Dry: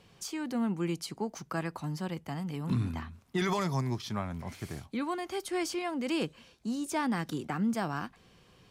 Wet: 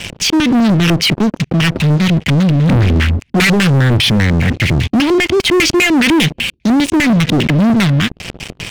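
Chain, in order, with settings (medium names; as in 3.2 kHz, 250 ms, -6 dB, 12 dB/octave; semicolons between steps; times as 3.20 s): resonant high shelf 1.8 kHz +14 dB, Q 3; band-stop 7.5 kHz, Q 21; LFO low-pass square 5 Hz 350–1900 Hz; tone controls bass +14 dB, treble +13 dB; waveshaping leveller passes 5; peak limiter -15 dBFS, peak gain reduction 8.5 dB; loudspeaker Doppler distortion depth 0.45 ms; trim +7 dB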